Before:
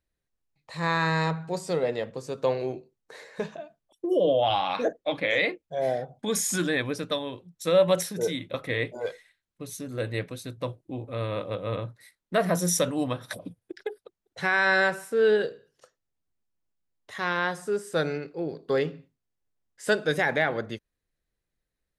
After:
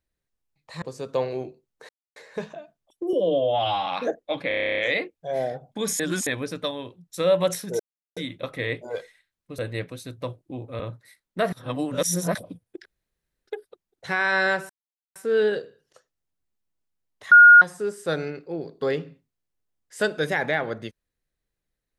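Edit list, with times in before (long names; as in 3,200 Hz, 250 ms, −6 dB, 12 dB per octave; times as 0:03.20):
0:00.82–0:02.11: remove
0:03.18: splice in silence 0.27 s
0:04.15–0:04.64: time-stretch 1.5×
0:05.25: stutter 0.03 s, 11 plays
0:06.47–0:06.74: reverse
0:08.27: splice in silence 0.37 s
0:09.69–0:09.98: remove
0:11.19–0:11.75: remove
0:12.48–0:13.30: reverse
0:13.81: splice in room tone 0.62 s
0:15.03: splice in silence 0.46 s
0:17.19–0:17.49: beep over 1,430 Hz −6.5 dBFS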